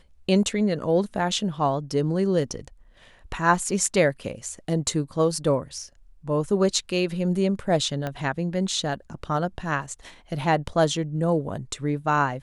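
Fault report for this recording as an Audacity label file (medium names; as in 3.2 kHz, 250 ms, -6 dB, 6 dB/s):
8.070000	8.070000	pop -16 dBFS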